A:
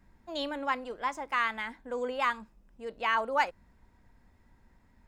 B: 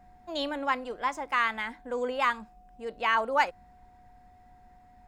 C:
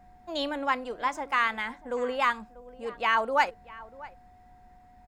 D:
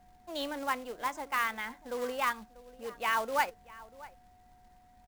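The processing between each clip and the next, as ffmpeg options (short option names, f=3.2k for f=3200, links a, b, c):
-af "aeval=exprs='val(0)+0.00126*sin(2*PI*730*n/s)':c=same,volume=2.5dB"
-filter_complex "[0:a]asplit=2[a][b];[b]adelay=641.4,volume=-19dB,highshelf=f=4k:g=-14.4[c];[a][c]amix=inputs=2:normalize=0,volume=1dB"
-af "acrusher=bits=3:mode=log:mix=0:aa=0.000001,volume=-5.5dB"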